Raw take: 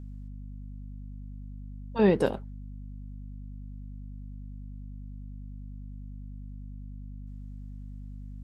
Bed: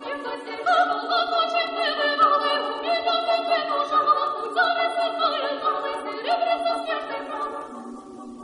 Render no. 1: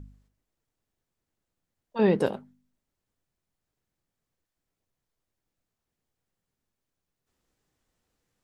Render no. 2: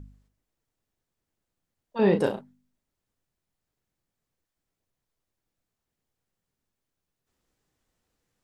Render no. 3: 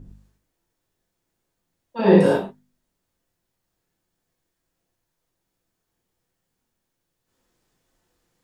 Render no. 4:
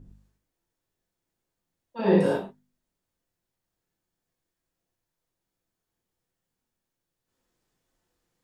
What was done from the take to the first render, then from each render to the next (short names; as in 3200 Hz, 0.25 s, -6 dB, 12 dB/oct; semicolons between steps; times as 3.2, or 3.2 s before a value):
de-hum 50 Hz, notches 5
1.98–2.41 doubler 35 ms -6 dB
non-linear reverb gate 0.13 s flat, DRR -6 dB
gain -6.5 dB